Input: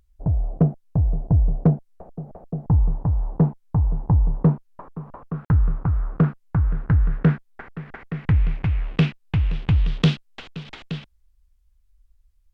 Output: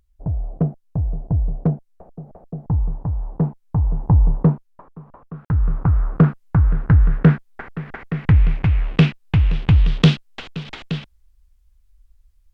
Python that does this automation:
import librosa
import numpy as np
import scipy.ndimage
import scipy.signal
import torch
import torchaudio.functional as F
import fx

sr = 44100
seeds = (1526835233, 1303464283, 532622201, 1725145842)

y = fx.gain(x, sr, db=fx.line((3.39, -2.0), (4.3, 5.0), (4.85, -5.0), (5.37, -5.0), (5.82, 5.0)))